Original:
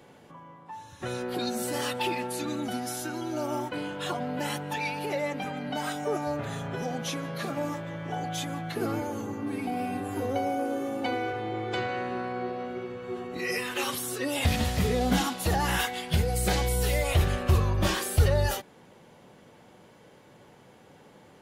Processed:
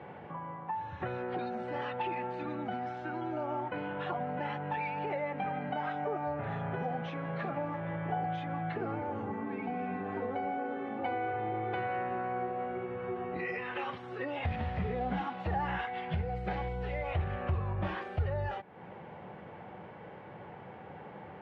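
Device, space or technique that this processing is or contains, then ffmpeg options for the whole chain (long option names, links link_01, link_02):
bass amplifier: -filter_complex "[0:a]highshelf=frequency=3700:gain=5.5,asettb=1/sr,asplit=3[link_01][link_02][link_03];[link_01]atrim=end=9.304[link_04];[link_02]atrim=start=9.3:end=10.99,asetpts=PTS-STARTPTS,afade=type=in:duration=0.004:curve=qsin,afade=type=out:start_time=1.686:duration=0.004:curve=qsin,aecho=1:1:4.6:0.69,atrim=end_sample=74529[link_05];[link_03]atrim=start=10.986[link_06];[link_04][link_05]acrossfade=duration=0.004:curve1=hsin:curve2=qsin[link_07];[link_07][link_06]acrossfade=duration=0.004:curve1=qsin:curve2=hsin,acompressor=threshold=-42dB:ratio=3,highpass=64,equalizer=frequency=86:width_type=q:width=4:gain=5,equalizer=frequency=180:width_type=q:width=4:gain=3,equalizer=frequency=260:width_type=q:width=4:gain=-6,equalizer=frequency=790:width_type=q:width=4:gain=6,lowpass=frequency=2300:width=0.5412,lowpass=frequency=2300:width=1.3066,highshelf=frequency=8500:gain=4,volume=5.5dB"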